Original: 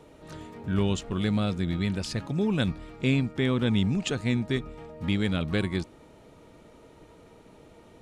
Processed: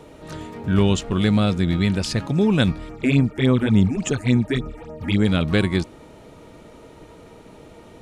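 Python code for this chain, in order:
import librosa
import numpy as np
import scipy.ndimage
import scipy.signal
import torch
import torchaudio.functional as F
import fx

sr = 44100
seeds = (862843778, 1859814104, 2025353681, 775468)

y = fx.phaser_stages(x, sr, stages=8, low_hz=130.0, high_hz=4300.0, hz=3.5, feedback_pct=25, at=(2.88, 5.26), fade=0.02)
y = y * librosa.db_to_amplitude(8.0)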